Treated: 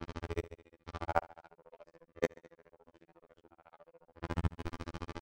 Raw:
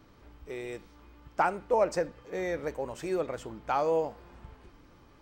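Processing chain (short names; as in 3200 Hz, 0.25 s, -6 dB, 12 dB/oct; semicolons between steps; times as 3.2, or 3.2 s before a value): spectral swells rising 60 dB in 0.61 s; added harmonics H 8 -20 dB, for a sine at -11 dBFS; in parallel at +2 dB: negative-ratio compressor -38 dBFS, ratio -1; on the sum: flipped gate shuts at -21 dBFS, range -36 dB; on a send: feedback echo 0.107 s, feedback 42%, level -18 dB; on the sum: robotiser 84 Hz; grains 59 ms, grains 14/s, spray 17 ms, pitch spread up and down by 0 st; low-pass opened by the level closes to 2900 Hz, open at -42.5 dBFS; gain +7.5 dB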